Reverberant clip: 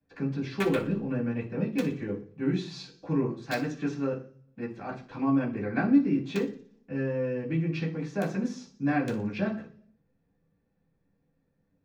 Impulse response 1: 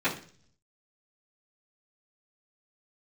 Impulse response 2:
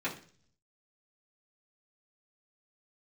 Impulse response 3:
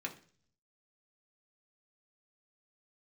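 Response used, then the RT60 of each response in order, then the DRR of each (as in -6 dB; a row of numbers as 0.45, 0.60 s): 2; 0.45, 0.45, 0.45 s; -15.0, -9.0, 0.0 dB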